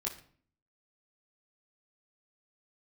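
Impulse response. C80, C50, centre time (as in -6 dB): 15.0 dB, 11.0 dB, 21 ms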